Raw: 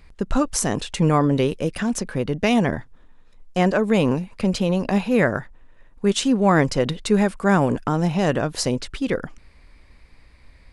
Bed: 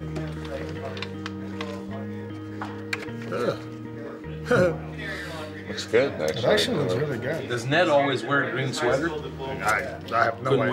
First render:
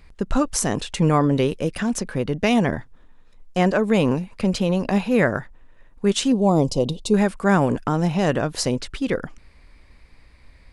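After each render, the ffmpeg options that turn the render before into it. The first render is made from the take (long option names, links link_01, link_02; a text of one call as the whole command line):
ffmpeg -i in.wav -filter_complex "[0:a]asettb=1/sr,asplit=3[link_01][link_02][link_03];[link_01]atrim=end=6.324[link_04];[link_02]atrim=start=6.32:end=7.14,asetpts=PTS-STARTPTS,afade=type=in:duration=0.004:curve=qsin,afade=type=out:start_time=0.816:duration=0.004:curve=qsin,asuperstop=centerf=1700:order=4:qfactor=0.73[link_05];[link_03]atrim=start=7.136[link_06];[link_04][link_05]acrossfade=duration=0.004:curve1=hsin:curve2=qsin[link_07];[link_07][link_06]acrossfade=duration=0.004:curve1=qsin:curve2=hsin" out.wav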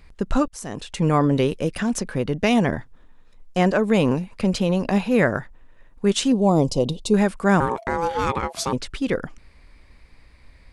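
ffmpeg -i in.wav -filter_complex "[0:a]asettb=1/sr,asplit=3[link_01][link_02][link_03];[link_01]atrim=end=7.604[link_04];[link_02]atrim=start=7.6:end=8.73,asetpts=PTS-STARTPTS,afade=type=in:duration=0.004:curve=qsin,afade=type=out:start_time=1.126:duration=0.004:curve=qsin,aeval=exprs='val(0)*sin(2*PI*670*n/s)':channel_layout=same[link_05];[link_03]atrim=start=8.726[link_06];[link_04][link_05]acrossfade=duration=0.004:curve1=hsin:curve2=qsin[link_07];[link_07][link_06]acrossfade=duration=0.004:curve1=qsin:curve2=hsin,asplit=2[link_08][link_09];[link_08]atrim=end=0.48,asetpts=PTS-STARTPTS,afade=type=out:start_time=0.476:duration=0.004:curve=hsin:silence=0.0749894[link_10];[link_09]atrim=start=0.48,asetpts=PTS-STARTPTS,afade=type=in:duration=0.73:silence=0.0749894[link_11];[link_10][link_11]concat=n=2:v=0:a=1" out.wav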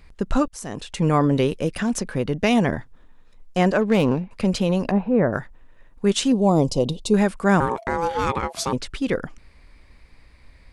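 ffmpeg -i in.wav -filter_complex "[0:a]asettb=1/sr,asplit=3[link_01][link_02][link_03];[link_01]atrim=end=3.814[link_04];[link_02]atrim=start=3.81:end=4.31,asetpts=PTS-STARTPTS,afade=type=in:duration=0.004:curve=qsin,afade=type=out:start_time=0.496:duration=0.004:curve=qsin,adynamicsmooth=sensitivity=4:basefreq=1500[link_05];[link_03]atrim=start=4.306[link_06];[link_04][link_05]acrossfade=duration=0.004:curve1=hsin:curve2=qsin[link_07];[link_07][link_06]acrossfade=duration=0.004:curve1=qsin:curve2=hsin,asettb=1/sr,asplit=3[link_08][link_09][link_10];[link_08]atrim=end=4.914[link_11];[link_09]atrim=start=4.91:end=5.33,asetpts=PTS-STARTPTS,afade=type=in:duration=0.004:curve=qsin,afade=type=out:start_time=0.416:duration=0.004:curve=qsin,lowpass=1000[link_12];[link_10]atrim=start=5.326[link_13];[link_11][link_12]acrossfade=duration=0.004:curve1=hsin:curve2=qsin[link_14];[link_14][link_13]acrossfade=duration=0.004:curve1=qsin:curve2=hsin" out.wav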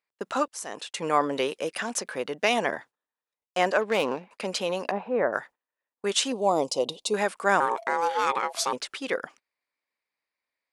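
ffmpeg -i in.wav -af "agate=range=-28dB:threshold=-37dB:ratio=16:detection=peak,highpass=550" out.wav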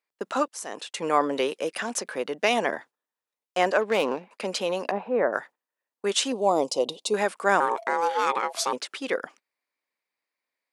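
ffmpeg -i in.wav -af "highpass=210,lowshelf=frequency=480:gain=3.5" out.wav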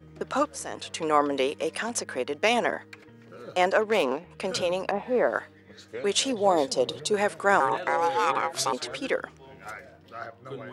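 ffmpeg -i in.wav -i bed.wav -filter_complex "[1:a]volume=-17dB[link_01];[0:a][link_01]amix=inputs=2:normalize=0" out.wav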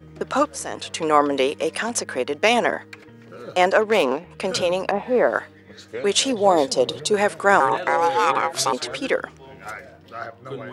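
ffmpeg -i in.wav -af "volume=5.5dB" out.wav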